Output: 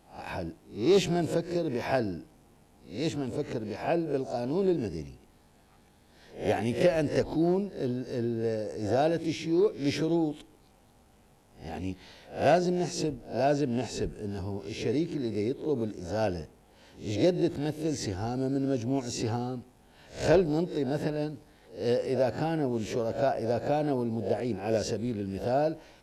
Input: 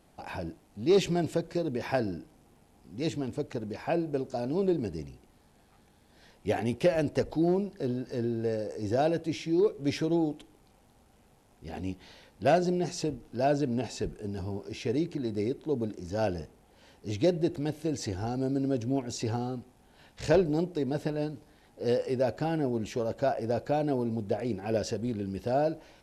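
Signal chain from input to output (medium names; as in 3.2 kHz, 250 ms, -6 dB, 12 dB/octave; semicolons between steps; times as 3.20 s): reverse spectral sustain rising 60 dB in 0.37 s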